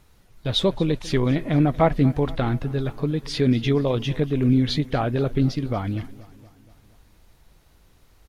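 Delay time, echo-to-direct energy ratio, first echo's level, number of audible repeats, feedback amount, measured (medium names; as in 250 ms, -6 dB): 237 ms, -18.0 dB, -20.0 dB, 4, 58%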